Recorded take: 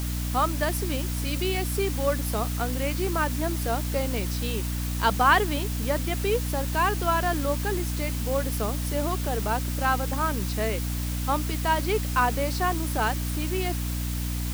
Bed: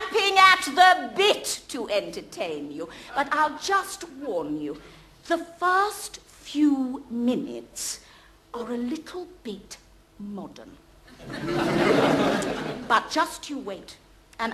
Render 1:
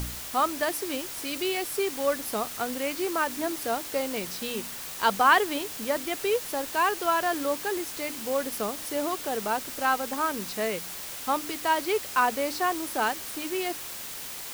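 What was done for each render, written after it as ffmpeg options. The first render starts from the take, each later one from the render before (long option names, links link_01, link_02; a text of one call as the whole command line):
ffmpeg -i in.wav -af "bandreject=frequency=60:width_type=h:width=4,bandreject=frequency=120:width_type=h:width=4,bandreject=frequency=180:width_type=h:width=4,bandreject=frequency=240:width_type=h:width=4,bandreject=frequency=300:width_type=h:width=4" out.wav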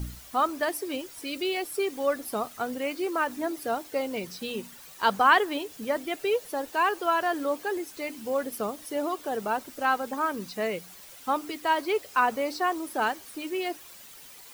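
ffmpeg -i in.wav -af "afftdn=noise_reduction=12:noise_floor=-38" out.wav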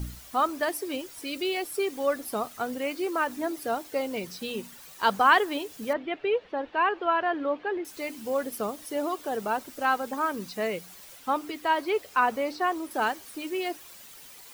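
ffmpeg -i in.wav -filter_complex "[0:a]asettb=1/sr,asplit=3[link_01][link_02][link_03];[link_01]atrim=end=5.934[link_04];[link_02]atrim=start=5.93:end=7.85,asetpts=PTS-STARTPTS,afade=type=in:duration=0.004:curve=qsin,afade=type=out:start_time=1.916:duration=0.004:curve=qsin,lowpass=frequency=3200:width=0.5412,lowpass=frequency=3200:width=1.3066[link_05];[link_03]atrim=start=7.846[link_06];[link_04][link_05]acrossfade=duration=0.004:curve1=hsin:curve2=qsin[link_07];[link_07][link_06]acrossfade=duration=0.004:curve1=qsin:curve2=hsin,asettb=1/sr,asplit=3[link_08][link_09][link_10];[link_08]atrim=end=11.174[link_11];[link_09]atrim=start=11.17:end=12.91,asetpts=PTS-STARTPTS,afade=type=in:duration=0.004:curve=qsin,afade=type=out:start_time=1.736:duration=0.004:curve=qsin,acrossover=split=4000[link_12][link_13];[link_13]acompressor=threshold=-47dB:ratio=4:attack=1:release=60[link_14];[link_12][link_14]amix=inputs=2:normalize=0[link_15];[link_10]atrim=start=12.906[link_16];[link_11][link_15]acrossfade=duration=0.004:curve1=hsin:curve2=qsin[link_17];[link_17][link_16]acrossfade=duration=0.004:curve1=qsin:curve2=hsin" out.wav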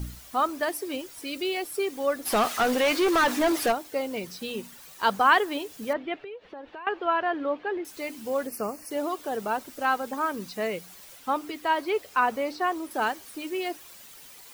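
ffmpeg -i in.wav -filter_complex "[0:a]asplit=3[link_01][link_02][link_03];[link_01]afade=type=out:start_time=2.25:duration=0.02[link_04];[link_02]asplit=2[link_05][link_06];[link_06]highpass=frequency=720:poles=1,volume=25dB,asoftclip=type=tanh:threshold=-14.5dB[link_07];[link_05][link_07]amix=inputs=2:normalize=0,lowpass=frequency=4600:poles=1,volume=-6dB,afade=type=in:start_time=2.25:duration=0.02,afade=type=out:start_time=3.71:duration=0.02[link_08];[link_03]afade=type=in:start_time=3.71:duration=0.02[link_09];[link_04][link_08][link_09]amix=inputs=3:normalize=0,asettb=1/sr,asplit=3[link_10][link_11][link_12];[link_10]atrim=end=6.224[link_13];[link_11]atrim=start=6.22:end=6.87,asetpts=PTS-STARTPTS,afade=type=in:duration=0.004:curve=qsin,afade=type=out:start_time=0.646:duration=0.004:curve=qsin,acompressor=threshold=-37dB:ratio=10:attack=3.2:release=140:knee=1:detection=peak[link_14];[link_12]atrim=start=6.866[link_15];[link_13][link_14]acrossfade=duration=0.004:curve1=hsin:curve2=qsin[link_16];[link_16][link_15]acrossfade=duration=0.004:curve1=qsin:curve2=hsin,asettb=1/sr,asplit=3[link_17][link_18][link_19];[link_17]atrim=end=8.474[link_20];[link_18]atrim=start=8.47:end=8.91,asetpts=PTS-STARTPTS,afade=type=in:duration=0.004:curve=qsin,afade=type=out:start_time=0.436:duration=0.004:curve=qsin,asuperstop=centerf=3500:order=12:qfactor=2.5[link_21];[link_19]atrim=start=8.906[link_22];[link_20][link_21]acrossfade=duration=0.004:curve1=hsin:curve2=qsin[link_23];[link_23][link_22]acrossfade=duration=0.004:curve1=qsin:curve2=hsin" out.wav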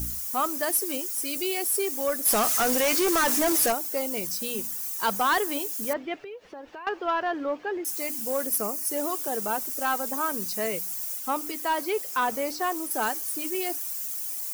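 ffmpeg -i in.wav -af "aexciter=amount=5.2:drive=4.3:freq=5300,asoftclip=type=tanh:threshold=-17.5dB" out.wav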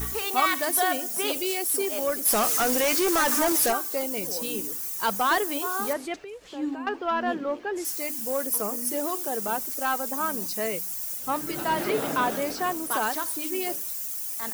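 ffmpeg -i in.wav -i bed.wav -filter_complex "[1:a]volume=-10dB[link_01];[0:a][link_01]amix=inputs=2:normalize=0" out.wav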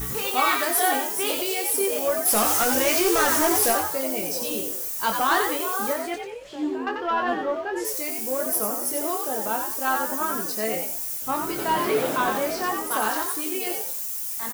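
ffmpeg -i in.wav -filter_complex "[0:a]asplit=2[link_01][link_02];[link_02]adelay=23,volume=-5.5dB[link_03];[link_01][link_03]amix=inputs=2:normalize=0,asplit=5[link_04][link_05][link_06][link_07][link_08];[link_05]adelay=90,afreqshift=83,volume=-5.5dB[link_09];[link_06]adelay=180,afreqshift=166,volume=-15.4dB[link_10];[link_07]adelay=270,afreqshift=249,volume=-25.3dB[link_11];[link_08]adelay=360,afreqshift=332,volume=-35.2dB[link_12];[link_04][link_09][link_10][link_11][link_12]amix=inputs=5:normalize=0" out.wav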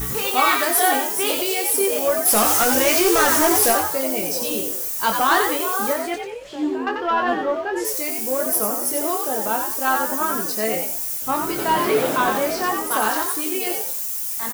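ffmpeg -i in.wav -af "volume=4dB" out.wav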